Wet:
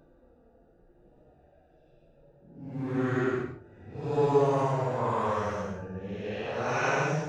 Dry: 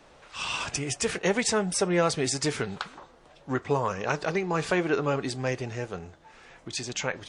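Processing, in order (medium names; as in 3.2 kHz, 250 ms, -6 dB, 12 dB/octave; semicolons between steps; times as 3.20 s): local Wiener filter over 41 samples; de-hum 293.1 Hz, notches 5; Paulstretch 6.7×, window 0.10 s, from 3.08 s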